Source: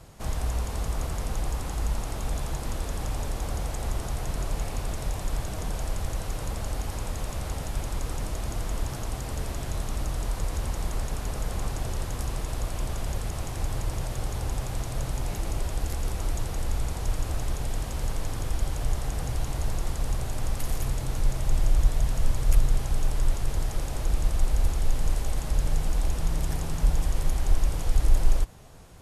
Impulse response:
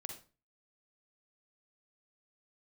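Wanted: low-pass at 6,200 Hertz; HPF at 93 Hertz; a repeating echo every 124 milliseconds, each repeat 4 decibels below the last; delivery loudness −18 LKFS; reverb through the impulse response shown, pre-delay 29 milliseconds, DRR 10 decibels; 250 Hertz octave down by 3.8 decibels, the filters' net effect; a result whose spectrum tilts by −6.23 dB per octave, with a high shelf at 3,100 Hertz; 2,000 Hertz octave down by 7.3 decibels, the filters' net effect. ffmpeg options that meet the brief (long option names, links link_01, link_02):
-filter_complex "[0:a]highpass=93,lowpass=6200,equalizer=frequency=250:width_type=o:gain=-5.5,equalizer=frequency=2000:width_type=o:gain=-6.5,highshelf=frequency=3100:gain=-8.5,aecho=1:1:124|248|372|496|620|744|868|992|1116:0.631|0.398|0.25|0.158|0.0994|0.0626|0.0394|0.0249|0.0157,asplit=2[link_01][link_02];[1:a]atrim=start_sample=2205,adelay=29[link_03];[link_02][link_03]afir=irnorm=-1:irlink=0,volume=-7dB[link_04];[link_01][link_04]amix=inputs=2:normalize=0,volume=17.5dB"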